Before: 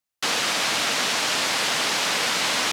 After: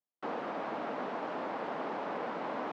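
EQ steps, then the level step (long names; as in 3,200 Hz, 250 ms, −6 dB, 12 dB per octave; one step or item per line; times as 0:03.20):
flat-topped band-pass 450 Hz, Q 0.59
low-shelf EQ 370 Hz +3 dB
−6.0 dB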